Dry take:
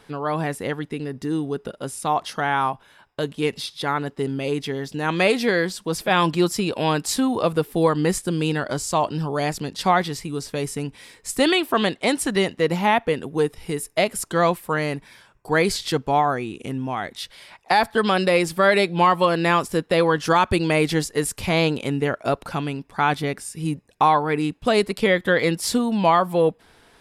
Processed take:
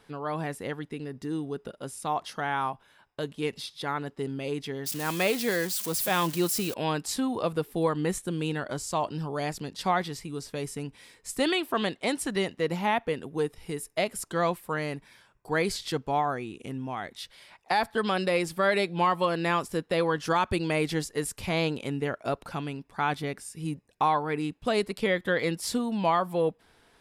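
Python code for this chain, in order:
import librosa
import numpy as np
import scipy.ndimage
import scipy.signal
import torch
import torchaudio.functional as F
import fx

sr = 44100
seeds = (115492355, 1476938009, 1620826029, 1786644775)

y = fx.crossing_spikes(x, sr, level_db=-18.0, at=(4.86, 6.74))
y = fx.notch(y, sr, hz=4900.0, q=5.2, at=(7.79, 8.78))
y = y * librosa.db_to_amplitude(-7.5)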